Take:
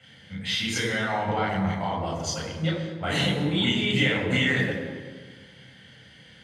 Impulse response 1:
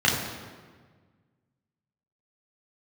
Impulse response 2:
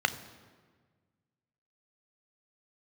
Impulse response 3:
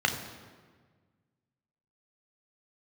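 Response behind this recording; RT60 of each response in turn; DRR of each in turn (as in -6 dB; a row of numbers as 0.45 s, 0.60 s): 1; 1.5 s, 1.6 s, 1.5 s; -4.0 dB, 10.5 dB, 3.5 dB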